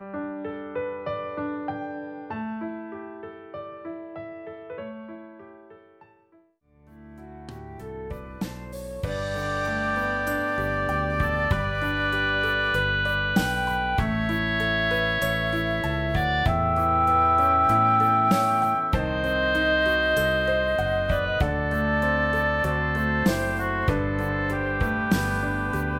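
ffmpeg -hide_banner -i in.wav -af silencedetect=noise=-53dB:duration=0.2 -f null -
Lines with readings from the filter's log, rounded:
silence_start: 6.41
silence_end: 6.70 | silence_duration: 0.29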